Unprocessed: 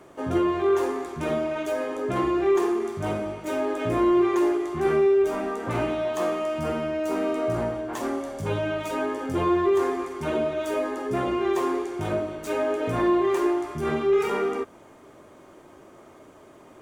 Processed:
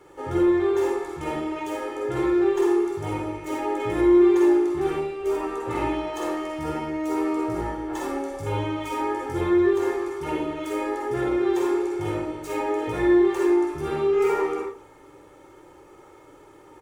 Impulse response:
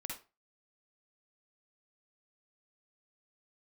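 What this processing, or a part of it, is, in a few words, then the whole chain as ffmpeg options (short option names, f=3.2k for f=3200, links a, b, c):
microphone above a desk: -filter_complex "[0:a]aecho=1:1:2.3:0.83[a];[1:a]atrim=start_sample=2205[b];[a][b]afir=irnorm=-1:irlink=0"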